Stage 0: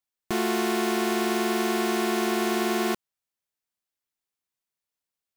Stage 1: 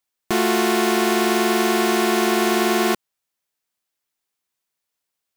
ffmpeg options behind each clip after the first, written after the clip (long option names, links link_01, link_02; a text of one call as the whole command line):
ffmpeg -i in.wav -af "lowshelf=frequency=190:gain=-5,volume=7.5dB" out.wav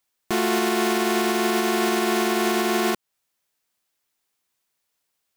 ffmpeg -i in.wav -af "alimiter=limit=-16.5dB:level=0:latency=1:release=259,volume=4.5dB" out.wav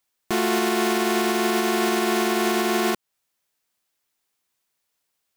ffmpeg -i in.wav -af anull out.wav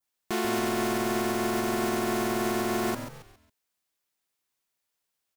ffmpeg -i in.wav -filter_complex "[0:a]asplit=5[link_01][link_02][link_03][link_04][link_05];[link_02]adelay=137,afreqshift=-110,volume=-9dB[link_06];[link_03]adelay=274,afreqshift=-220,volume=-17.9dB[link_07];[link_04]adelay=411,afreqshift=-330,volume=-26.7dB[link_08];[link_05]adelay=548,afreqshift=-440,volume=-35.6dB[link_09];[link_01][link_06][link_07][link_08][link_09]amix=inputs=5:normalize=0,adynamicequalizer=threshold=0.00891:dfrequency=3200:dqfactor=0.97:tfrequency=3200:tqfactor=0.97:attack=5:release=100:ratio=0.375:range=2.5:mode=cutabove:tftype=bell,volume=-6dB" out.wav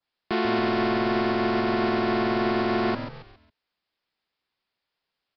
ffmpeg -i in.wav -filter_complex "[0:a]acrossover=split=140|1400|2000[link_01][link_02][link_03][link_04];[link_04]asoftclip=type=tanh:threshold=-30dB[link_05];[link_01][link_02][link_03][link_05]amix=inputs=4:normalize=0,aresample=11025,aresample=44100,volume=4dB" out.wav